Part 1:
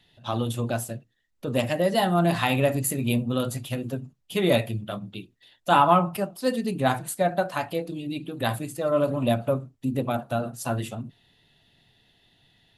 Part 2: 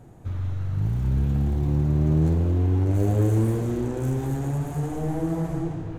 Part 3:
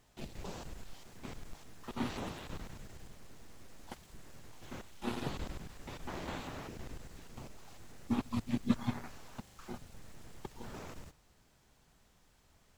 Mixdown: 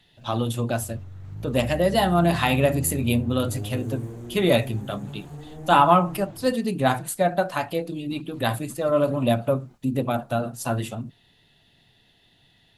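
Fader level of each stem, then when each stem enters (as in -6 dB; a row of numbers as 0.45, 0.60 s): +2.0, -12.0, -15.0 dB; 0.00, 0.55, 0.00 s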